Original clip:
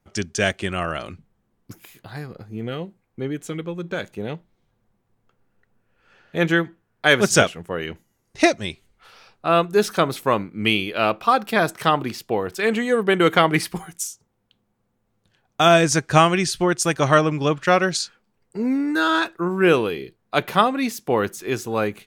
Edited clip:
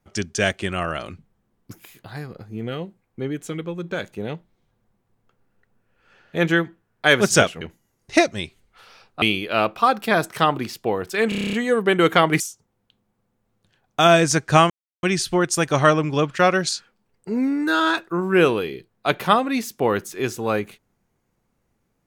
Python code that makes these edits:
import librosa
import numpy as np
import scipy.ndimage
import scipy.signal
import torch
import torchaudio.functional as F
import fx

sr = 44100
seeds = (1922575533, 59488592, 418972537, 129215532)

y = fx.edit(x, sr, fx.cut(start_s=7.61, length_s=0.26),
    fx.cut(start_s=9.48, length_s=1.19),
    fx.stutter(start_s=12.74, slice_s=0.03, count=9),
    fx.cut(start_s=13.61, length_s=0.4),
    fx.insert_silence(at_s=16.31, length_s=0.33), tone=tone)